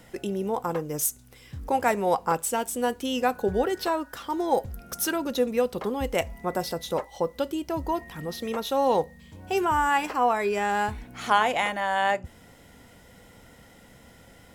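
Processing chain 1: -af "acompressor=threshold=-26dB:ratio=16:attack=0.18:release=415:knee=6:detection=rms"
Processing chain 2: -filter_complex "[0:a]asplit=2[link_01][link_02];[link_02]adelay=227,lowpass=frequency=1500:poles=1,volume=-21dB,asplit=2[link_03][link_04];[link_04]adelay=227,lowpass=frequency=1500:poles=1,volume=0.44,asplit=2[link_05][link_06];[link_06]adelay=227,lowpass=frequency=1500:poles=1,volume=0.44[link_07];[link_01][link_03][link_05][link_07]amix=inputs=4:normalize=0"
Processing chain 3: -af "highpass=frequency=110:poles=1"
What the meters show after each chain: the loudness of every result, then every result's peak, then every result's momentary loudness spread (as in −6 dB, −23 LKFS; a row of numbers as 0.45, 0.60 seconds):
−36.0, −27.0, −27.0 LKFS; −24.5, −9.0, −8.5 dBFS; 18, 8, 8 LU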